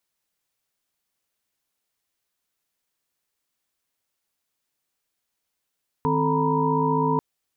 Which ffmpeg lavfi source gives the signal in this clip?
-f lavfi -i "aevalsrc='0.0531*(sin(2*PI*155.56*t)+sin(2*PI*261.63*t)+sin(2*PI*440*t)+sin(2*PI*932.33*t)+sin(2*PI*987.77*t))':d=1.14:s=44100"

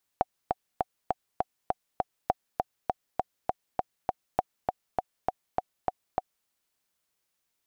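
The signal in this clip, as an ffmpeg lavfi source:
-f lavfi -i "aevalsrc='pow(10,(-9.5-3*gte(mod(t,7*60/201),60/201))/20)*sin(2*PI*743*mod(t,60/201))*exp(-6.91*mod(t,60/201)/0.03)':d=6.26:s=44100"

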